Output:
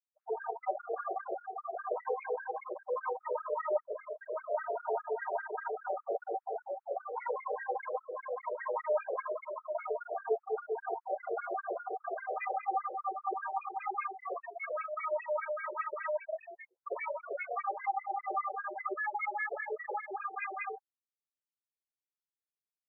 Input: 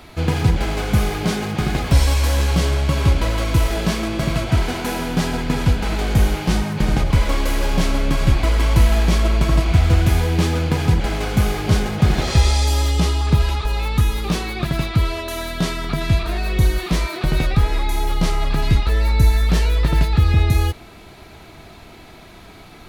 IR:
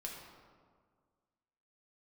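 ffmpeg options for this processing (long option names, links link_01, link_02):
-filter_complex "[0:a]asplit=3[link_01][link_02][link_03];[link_01]afade=type=out:start_time=3.81:duration=0.02[link_04];[link_02]volume=21.5dB,asoftclip=hard,volume=-21.5dB,afade=type=in:start_time=3.81:duration=0.02,afade=type=out:start_time=4.3:duration=0.02[link_05];[link_03]afade=type=in:start_time=4.3:duration=0.02[link_06];[link_04][link_05][link_06]amix=inputs=3:normalize=0,asplit=3[link_07][link_08][link_09];[link_07]afade=type=out:start_time=16.17:duration=0.02[link_10];[link_08]acompressor=threshold=-20dB:ratio=6,afade=type=in:start_time=16.17:duration=0.02,afade=type=out:start_time=16.9:duration=0.02[link_11];[link_09]afade=type=in:start_time=16.9:duration=0.02[link_12];[link_10][link_11][link_12]amix=inputs=3:normalize=0,highpass=frequency=350:width_type=q:width=0.5412,highpass=frequency=350:width_type=q:width=1.307,lowpass=frequency=2700:width_type=q:width=0.5176,lowpass=frequency=2700:width_type=q:width=0.7071,lowpass=frequency=2700:width_type=q:width=1.932,afreqshift=-56,asettb=1/sr,asplit=3[link_13][link_14][link_15];[link_13]atrim=end=6.094[link_16];[link_14]atrim=start=6.09:end=6.88,asetpts=PTS-STARTPTS,afade=type=in:duration=0.004:curve=qsin,afade=type=out:start_time=0.786:duration=0.004:curve=qsin,aemphasis=mode=reproduction:type=riaa[link_17];[link_15]atrim=start=6.876[link_18];[link_16][link_17]acrossfade=duration=0.004:curve1=hsin:curve2=qsin[link_19];[link_19][link_18]acrossfade=duration=0.004:curve1=qsin:curve2=hsin,aecho=1:1:292|584|876:0.15|0.0509|0.0173,alimiter=limit=-18.5dB:level=0:latency=1:release=136,afftfilt=real='re*gte(hypot(re,im),0.126)':imag='im*gte(hypot(re,im),0.126)':win_size=1024:overlap=0.75,aecho=1:1:48|69:0.631|0.562,afftfilt=real='re*between(b*sr/1024,520*pow(1900/520,0.5+0.5*sin(2*PI*5*pts/sr))/1.41,520*pow(1900/520,0.5+0.5*sin(2*PI*5*pts/sr))*1.41)':imag='im*between(b*sr/1024,520*pow(1900/520,0.5+0.5*sin(2*PI*5*pts/sr))/1.41,520*pow(1900/520,0.5+0.5*sin(2*PI*5*pts/sr))*1.41)':win_size=1024:overlap=0.75"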